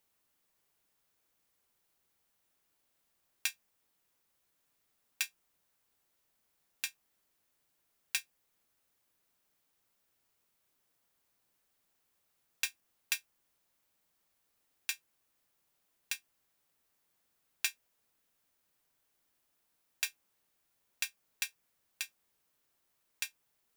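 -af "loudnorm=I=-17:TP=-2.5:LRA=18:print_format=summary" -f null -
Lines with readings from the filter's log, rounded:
Input Integrated:    -39.4 LUFS
Input True Peak:     -14.6 dBTP
Input LRA:             4.6 LU
Input Threshold:     -49.6 LUFS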